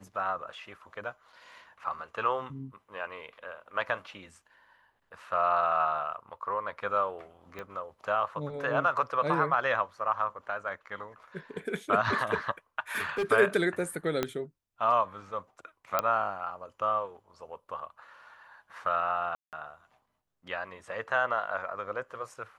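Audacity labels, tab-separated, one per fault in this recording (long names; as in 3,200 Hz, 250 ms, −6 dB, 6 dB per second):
7.590000	7.590000	click −26 dBFS
12.910000	13.240000	clipping −26 dBFS
14.230000	14.230000	click −13 dBFS
15.990000	15.990000	click −11 dBFS
19.350000	19.530000	drop-out 178 ms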